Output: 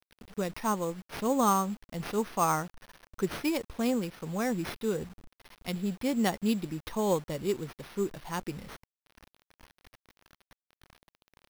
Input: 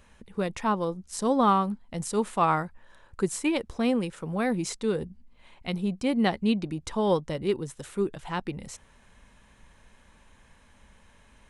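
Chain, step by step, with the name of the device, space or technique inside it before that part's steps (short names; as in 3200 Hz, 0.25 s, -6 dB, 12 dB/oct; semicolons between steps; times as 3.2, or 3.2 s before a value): early 8-bit sampler (sample-rate reducer 7500 Hz, jitter 0%; bit-crush 8-bit); gain -3.5 dB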